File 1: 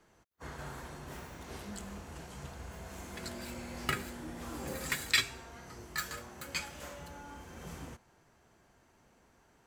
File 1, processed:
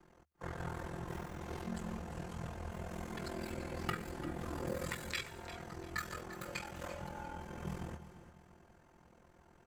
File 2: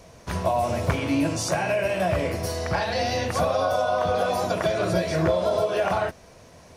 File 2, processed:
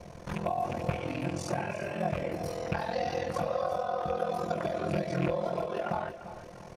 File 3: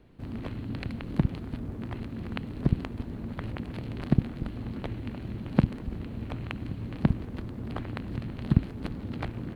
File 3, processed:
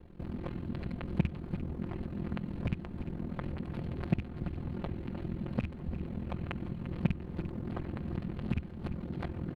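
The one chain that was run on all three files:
rattle on loud lows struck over -23 dBFS, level -15 dBFS; compression 2:1, threshold -39 dBFS; treble shelf 2.1 kHz -9 dB; comb 5.7 ms, depth 91%; ring modulator 21 Hz; peaking EQ 76 Hz +10 dB 0.26 oct; feedback delay 346 ms, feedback 35%, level -13 dB; trim +3 dB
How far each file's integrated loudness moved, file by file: -4.0 LU, -8.5 LU, -5.0 LU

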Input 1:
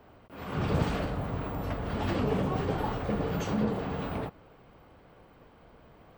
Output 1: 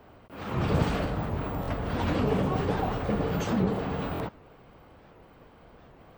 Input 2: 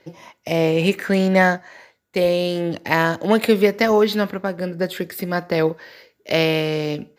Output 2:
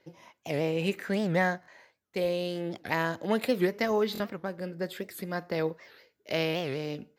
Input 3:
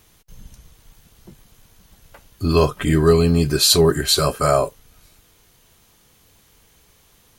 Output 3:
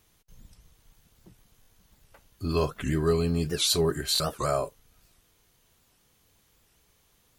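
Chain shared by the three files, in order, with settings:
buffer glitch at 1.61/4.13 s, samples 1024, times 2; warped record 78 rpm, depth 250 cents; peak normalisation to -12 dBFS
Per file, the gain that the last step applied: +2.5 dB, -11.0 dB, -10.5 dB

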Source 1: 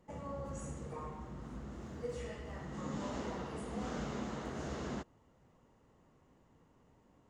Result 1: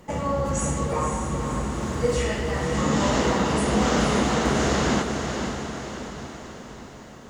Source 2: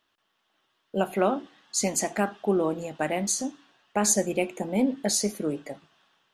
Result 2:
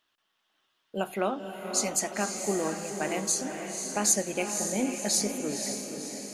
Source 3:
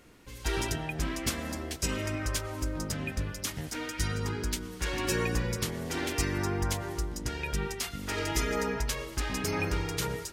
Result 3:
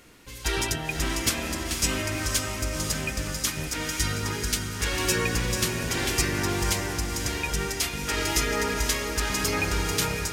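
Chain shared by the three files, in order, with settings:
tilt shelf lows -3 dB, about 1.4 kHz; echo that smears into a reverb 522 ms, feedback 55%, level -6 dB; peak normalisation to -9 dBFS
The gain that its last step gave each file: +20.0 dB, -3.0 dB, +5.0 dB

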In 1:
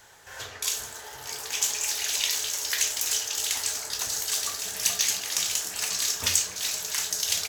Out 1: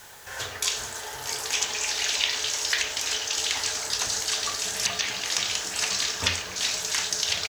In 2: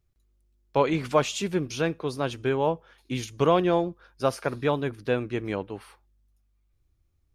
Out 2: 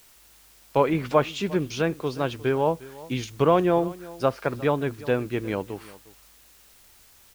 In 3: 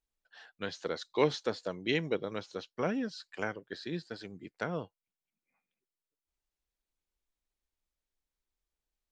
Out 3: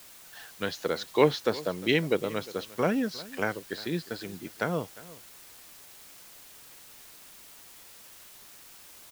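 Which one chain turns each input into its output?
low-pass that closes with the level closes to 2.5 kHz, closed at -20.5 dBFS; in parallel at -4.5 dB: word length cut 8-bit, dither triangular; on the sum: delay 355 ms -19.5 dB; peak normalisation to -6 dBFS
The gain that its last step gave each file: +1.0 dB, -2.5 dB, +2.0 dB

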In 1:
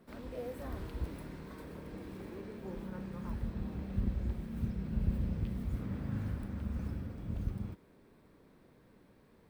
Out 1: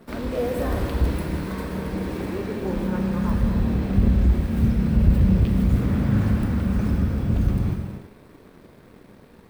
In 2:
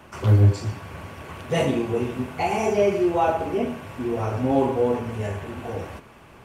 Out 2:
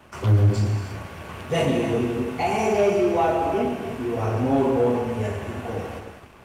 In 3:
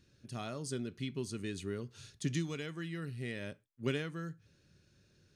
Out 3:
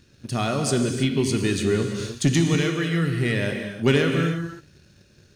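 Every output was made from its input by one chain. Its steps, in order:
gated-style reverb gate 350 ms flat, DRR 4 dB; waveshaping leveller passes 1; normalise loudness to -23 LUFS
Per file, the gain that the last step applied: +12.0 dB, -3.5 dB, +12.5 dB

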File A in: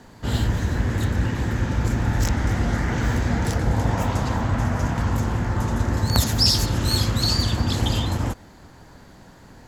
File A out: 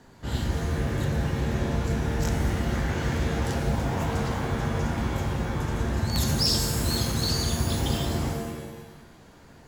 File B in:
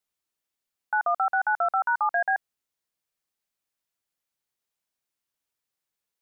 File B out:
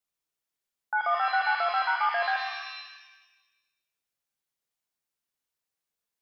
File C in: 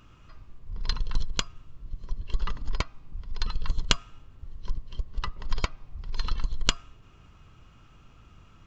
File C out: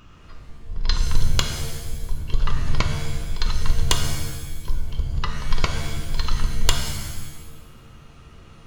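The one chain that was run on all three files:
wavefolder -9.5 dBFS; pitch-shifted reverb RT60 1.1 s, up +7 st, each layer -2 dB, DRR 5 dB; normalise loudness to -27 LUFS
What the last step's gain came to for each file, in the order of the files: -7.0 dB, -3.5 dB, +5.5 dB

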